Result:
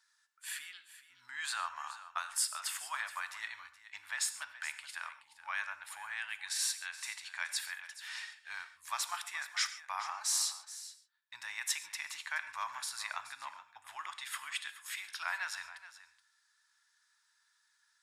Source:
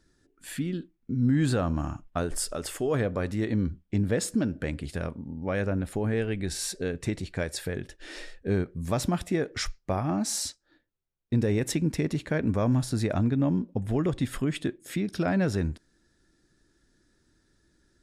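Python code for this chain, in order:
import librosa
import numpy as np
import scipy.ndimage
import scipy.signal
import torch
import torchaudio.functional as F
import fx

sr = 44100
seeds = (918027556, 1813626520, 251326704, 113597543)

p1 = scipy.signal.sosfilt(scipy.signal.ellip(4, 1.0, 50, 940.0, 'highpass', fs=sr, output='sos'), x)
p2 = p1 + fx.echo_single(p1, sr, ms=424, db=-15.0, dry=0)
y = fx.rev_gated(p2, sr, seeds[0], gate_ms=160, shape='flat', drr_db=11.0)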